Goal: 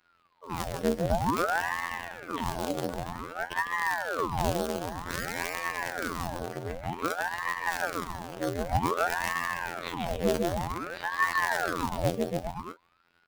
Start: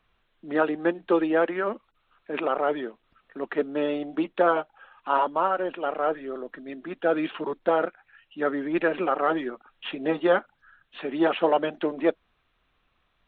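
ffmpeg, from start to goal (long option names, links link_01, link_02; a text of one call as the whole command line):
ffmpeg -i in.wav -filter_complex "[0:a]asplit=2[link_01][link_02];[link_02]adelay=41,volume=-13dB[link_03];[link_01][link_03]amix=inputs=2:normalize=0,aecho=1:1:150|285|406.5|515.8|614.3:0.631|0.398|0.251|0.158|0.1,asplit=2[link_04][link_05];[link_05]acrusher=samples=17:mix=1:aa=0.000001:lfo=1:lforange=17:lforate=3.4,volume=-5dB[link_06];[link_04][link_06]amix=inputs=2:normalize=0,acrossover=split=420|3000[link_07][link_08][link_09];[link_08]acompressor=threshold=-33dB:ratio=6[link_10];[link_07][link_10][link_09]amix=inputs=3:normalize=0,asoftclip=type=tanh:threshold=-15.5dB,afftfilt=real='hypot(re,im)*cos(PI*b)':imag='0':win_size=2048:overlap=0.75,aeval=exprs='val(0)*sin(2*PI*790*n/s+790*0.85/0.53*sin(2*PI*0.53*n/s))':channel_layout=same,volume=2.5dB" out.wav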